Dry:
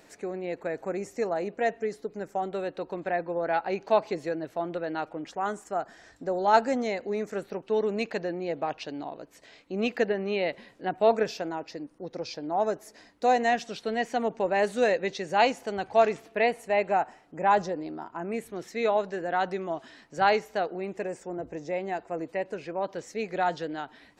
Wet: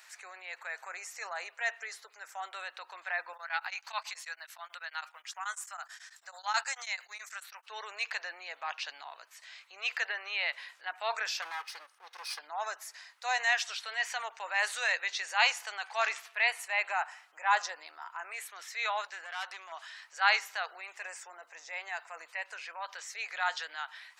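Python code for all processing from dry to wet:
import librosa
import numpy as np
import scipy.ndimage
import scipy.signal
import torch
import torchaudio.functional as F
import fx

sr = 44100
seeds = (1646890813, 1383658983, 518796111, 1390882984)

y = fx.chain(x, sr, fx.highpass(hz=820.0, slope=12),
    fx.high_shelf(hz=5200.0, db=10.0),
    fx.tremolo_abs(hz=9.2), at=(3.33, 7.66))
y = fx.chain(y, sr, fx.lower_of_two(delay_ms=2.4),
    fx.notch(hz=7300.0, q=6.2), at=(11.42, 12.39))
y = fx.chain(y, sr, fx.peak_eq(hz=1000.0, db=-4.0, octaves=2.6),
    fx.tube_stage(drive_db=29.0, bias=0.4), at=(19.07, 19.72))
y = scipy.signal.sosfilt(scipy.signal.butter(4, 1100.0, 'highpass', fs=sr, output='sos'), y)
y = fx.transient(y, sr, attack_db=-4, sustain_db=3)
y = y * librosa.db_to_amplitude(4.5)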